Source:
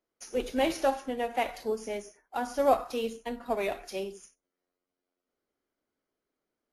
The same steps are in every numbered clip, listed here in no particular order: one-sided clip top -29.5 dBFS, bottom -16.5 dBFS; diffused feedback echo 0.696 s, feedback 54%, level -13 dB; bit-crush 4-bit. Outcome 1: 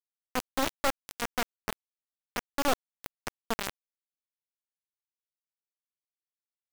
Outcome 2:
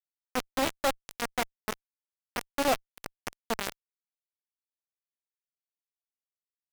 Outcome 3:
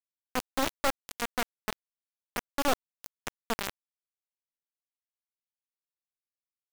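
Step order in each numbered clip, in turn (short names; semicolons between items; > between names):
diffused feedback echo > one-sided clip > bit-crush; diffused feedback echo > bit-crush > one-sided clip; one-sided clip > diffused feedback echo > bit-crush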